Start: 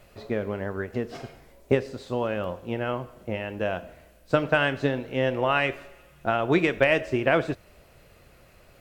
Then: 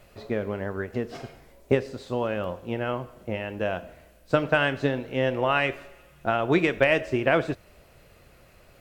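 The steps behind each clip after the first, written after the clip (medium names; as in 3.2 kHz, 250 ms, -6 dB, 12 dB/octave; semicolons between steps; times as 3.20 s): no audible change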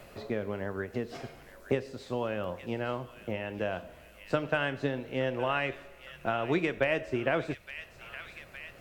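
feedback echo behind a high-pass 865 ms, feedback 49%, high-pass 2.2 kHz, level -11 dB; three bands compressed up and down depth 40%; trim -6 dB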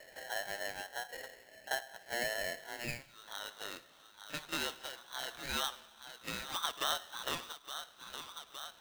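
pre-echo 38 ms -14.5 dB; band-pass sweep 690 Hz -> 2.4 kHz, 2.63–3.16 s; polarity switched at an audio rate 1.2 kHz; trim +1 dB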